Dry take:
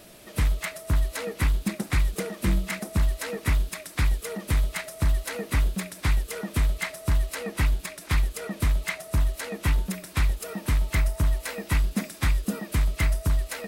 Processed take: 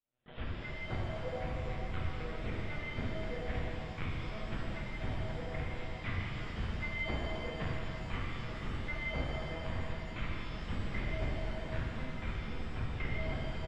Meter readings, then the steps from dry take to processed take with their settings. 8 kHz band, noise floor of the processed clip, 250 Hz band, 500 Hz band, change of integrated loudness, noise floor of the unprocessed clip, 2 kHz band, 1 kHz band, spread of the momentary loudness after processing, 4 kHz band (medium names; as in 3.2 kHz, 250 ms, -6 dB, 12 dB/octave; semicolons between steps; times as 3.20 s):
-27.5 dB, -43 dBFS, -9.5 dB, -6.0 dB, -12.0 dB, -46 dBFS, -8.0 dB, -6.5 dB, 4 LU, -9.5 dB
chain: recorder AGC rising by 71 dB/s; hum notches 60/120/180/240/300/360/420 Hz; gate -27 dBFS, range -39 dB; treble shelf 2.5 kHz -4 dB; band-stop 670 Hz, Q 12; saturation -22.5 dBFS, distortion -13 dB; inharmonic resonator 75 Hz, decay 0.58 s, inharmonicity 0.03; feedback delay 60 ms, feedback 33%, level -22 dB; LPC vocoder at 8 kHz pitch kept; pitch-shifted reverb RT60 3.1 s, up +7 st, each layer -8 dB, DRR -4.5 dB; trim +1.5 dB